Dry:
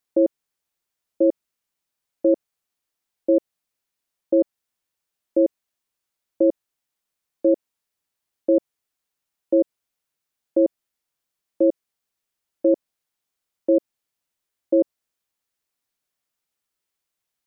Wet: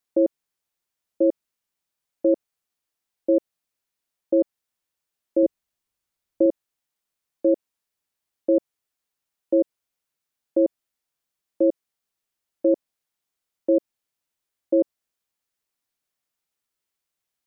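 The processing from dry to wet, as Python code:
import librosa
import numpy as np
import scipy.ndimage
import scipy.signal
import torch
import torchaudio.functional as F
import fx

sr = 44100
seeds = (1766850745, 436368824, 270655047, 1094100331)

y = fx.low_shelf(x, sr, hz=140.0, db=9.5, at=(5.43, 6.46))
y = F.gain(torch.from_numpy(y), -1.5).numpy()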